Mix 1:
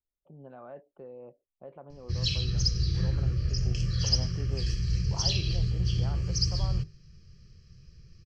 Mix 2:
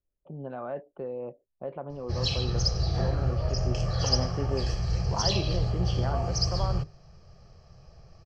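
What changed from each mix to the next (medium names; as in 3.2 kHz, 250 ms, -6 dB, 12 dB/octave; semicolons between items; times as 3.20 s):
speech +10.0 dB; background: remove Butterworth band-stop 780 Hz, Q 0.51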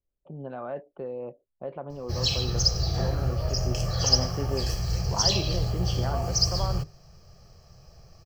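master: remove distance through air 120 m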